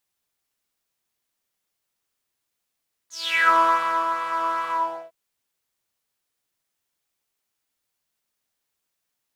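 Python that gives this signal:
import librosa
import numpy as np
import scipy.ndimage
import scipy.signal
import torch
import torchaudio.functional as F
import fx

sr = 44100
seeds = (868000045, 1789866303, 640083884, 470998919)

y = fx.sub_patch_pwm(sr, seeds[0], note=64, wave2='saw', interval_st=7, detune_cents=16, level2_db=-10.0, sub_db=-19.5, noise_db=-5.0, kind='bandpass', cutoff_hz=620.0, q=8.1, env_oct=3.5, env_decay_s=0.41, env_sustain_pct=25, attack_ms=396.0, decay_s=0.56, sustain_db=-8, release_s=0.41, note_s=1.6, lfo_hz=2.4, width_pct=11, width_swing_pct=6)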